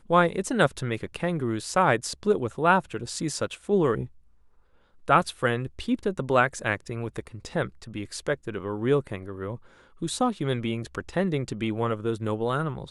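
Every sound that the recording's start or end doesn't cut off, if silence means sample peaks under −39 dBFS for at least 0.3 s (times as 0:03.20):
0:05.08–0:09.56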